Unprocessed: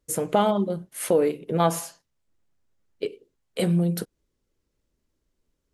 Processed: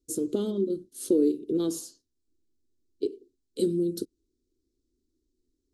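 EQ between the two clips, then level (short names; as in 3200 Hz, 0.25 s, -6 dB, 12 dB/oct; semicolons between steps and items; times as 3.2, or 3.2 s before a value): EQ curve 100 Hz 0 dB, 170 Hz -11 dB, 250 Hz +7 dB, 360 Hz +10 dB, 730 Hz -26 dB, 1400 Hz -18 dB, 2100 Hz -26 dB, 4000 Hz +1 dB, 7700 Hz 0 dB, 13000 Hz -6 dB; -3.5 dB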